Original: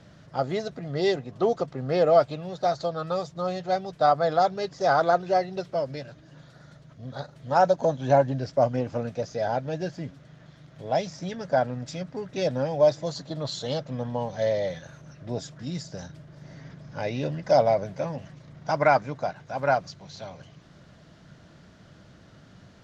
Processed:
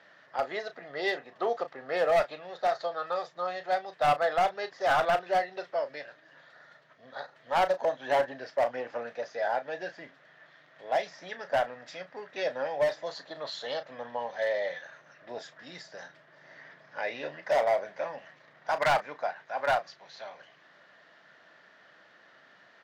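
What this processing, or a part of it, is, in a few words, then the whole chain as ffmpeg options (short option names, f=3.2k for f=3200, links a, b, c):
megaphone: -filter_complex "[0:a]highpass=650,lowpass=3.5k,equalizer=f=1.8k:t=o:w=0.25:g=9.5,asoftclip=type=hard:threshold=-20.5dB,asplit=2[a][b];[b]adelay=34,volume=-11.5dB[c];[a][c]amix=inputs=2:normalize=0"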